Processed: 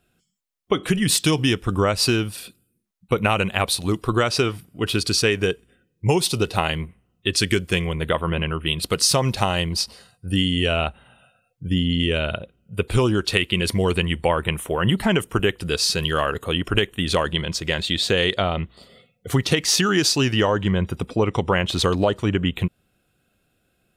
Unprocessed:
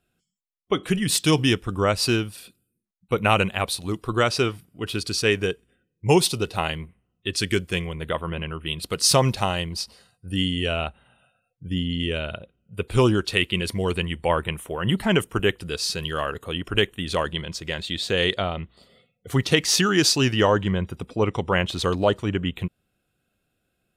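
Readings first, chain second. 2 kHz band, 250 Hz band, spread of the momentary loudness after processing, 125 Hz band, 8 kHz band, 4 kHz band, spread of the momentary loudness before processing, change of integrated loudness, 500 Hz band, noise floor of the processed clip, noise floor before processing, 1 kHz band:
+2.0 dB, +2.5 dB, 8 LU, +3.0 dB, +2.0 dB, +2.5 dB, 11 LU, +2.0 dB, +1.5 dB, −69 dBFS, −76 dBFS, +1.5 dB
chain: downward compressor, threshold −22 dBFS, peak gain reduction 10 dB
level +6.5 dB

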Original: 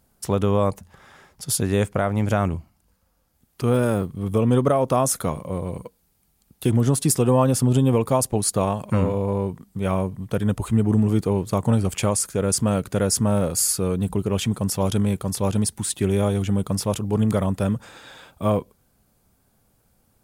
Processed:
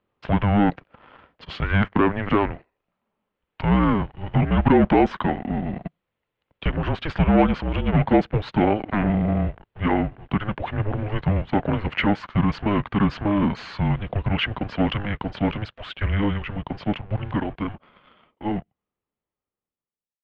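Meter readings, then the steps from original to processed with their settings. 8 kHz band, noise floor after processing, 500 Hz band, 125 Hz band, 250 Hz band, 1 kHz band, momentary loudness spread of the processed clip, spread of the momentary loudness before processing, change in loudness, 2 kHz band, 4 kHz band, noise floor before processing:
below −35 dB, below −85 dBFS, −3.5 dB, −2.0 dB, +1.0 dB, +2.5 dB, 11 LU, 8 LU, −1.0 dB, +7.5 dB, −1.0 dB, −66 dBFS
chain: fade-out on the ending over 5.39 s
dynamic equaliser 1,900 Hz, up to +8 dB, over −51 dBFS, Q 3.2
leveller curve on the samples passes 2
single-sideband voice off tune −310 Hz 350–3,400 Hz

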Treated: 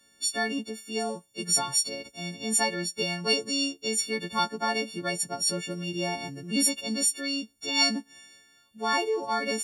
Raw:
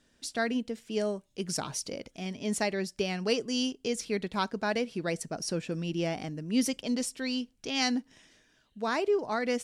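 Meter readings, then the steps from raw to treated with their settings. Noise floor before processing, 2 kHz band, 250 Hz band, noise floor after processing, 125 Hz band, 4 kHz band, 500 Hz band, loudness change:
−68 dBFS, +4.5 dB, −1.5 dB, −63 dBFS, −1.0 dB, +8.0 dB, −1.0 dB, +4.0 dB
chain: every partial snapped to a pitch grid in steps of 4 semitones
dynamic equaliser 930 Hz, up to +6 dB, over −49 dBFS, Q 3.5
high-pass filter 58 Hz
level −1 dB

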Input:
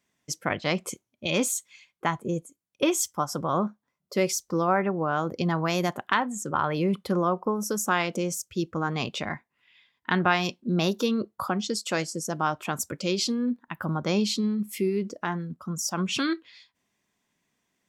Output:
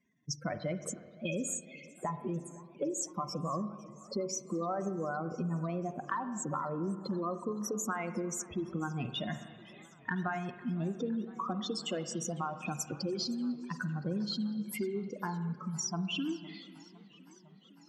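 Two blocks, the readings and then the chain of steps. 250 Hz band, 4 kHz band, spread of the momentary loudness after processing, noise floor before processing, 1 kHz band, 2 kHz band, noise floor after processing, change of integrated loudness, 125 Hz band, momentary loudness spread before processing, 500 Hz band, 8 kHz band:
−7.5 dB, −9.5 dB, 7 LU, −81 dBFS, −10.0 dB, −12.5 dB, −58 dBFS, −9.0 dB, −6.5 dB, 7 LU, −9.5 dB, −7.5 dB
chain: expanding power law on the bin magnitudes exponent 2.7
notch filter 820 Hz, Q 14
downward compressor 4 to 1, threshold −34 dBFS, peak gain reduction 13.5 dB
spring reverb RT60 1.7 s, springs 41/48 ms, chirp 45 ms, DRR 10 dB
feedback echo with a swinging delay time 508 ms, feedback 74%, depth 214 cents, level −22 dB

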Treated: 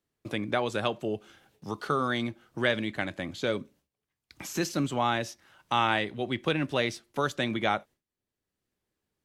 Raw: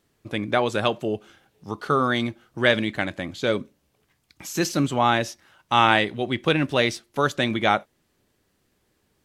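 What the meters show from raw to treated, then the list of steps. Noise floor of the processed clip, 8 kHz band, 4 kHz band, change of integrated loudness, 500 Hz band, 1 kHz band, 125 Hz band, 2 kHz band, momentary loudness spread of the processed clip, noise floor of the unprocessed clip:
below −85 dBFS, −6.0 dB, −7.0 dB, −7.0 dB, −6.5 dB, −7.0 dB, −6.5 dB, −7.0 dB, 9 LU, −70 dBFS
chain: noise gate with hold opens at −52 dBFS
multiband upward and downward compressor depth 40%
level −6.5 dB

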